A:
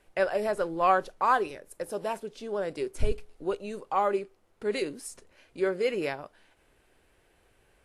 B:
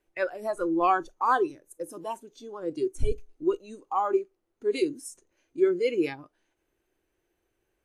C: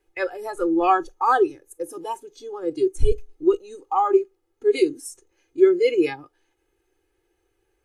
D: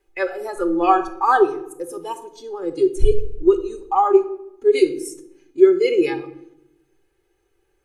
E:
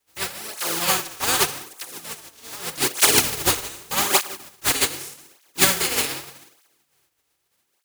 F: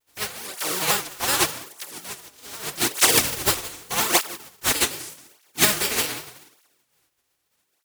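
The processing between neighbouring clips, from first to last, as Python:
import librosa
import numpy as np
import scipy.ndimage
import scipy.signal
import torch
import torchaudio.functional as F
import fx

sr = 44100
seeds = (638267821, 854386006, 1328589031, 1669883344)

y1 = fx.noise_reduce_blind(x, sr, reduce_db=14)
y1 = fx.peak_eq(y1, sr, hz=340.0, db=11.0, octaves=0.4)
y2 = y1 + 0.84 * np.pad(y1, (int(2.4 * sr / 1000.0), 0))[:len(y1)]
y2 = y2 * librosa.db_to_amplitude(2.5)
y3 = fx.room_shoebox(y2, sr, seeds[0], volume_m3=2400.0, walls='furnished', distance_m=1.2)
y3 = y3 * librosa.db_to_amplitude(1.5)
y4 = fx.spec_flatten(y3, sr, power=0.15)
y4 = fx.flanger_cancel(y4, sr, hz=0.83, depth_ms=6.0)
y4 = y4 * librosa.db_to_amplitude(-2.0)
y5 = fx.vibrato_shape(y4, sr, shape='square', rate_hz=5.5, depth_cents=160.0)
y5 = y5 * librosa.db_to_amplitude(-1.0)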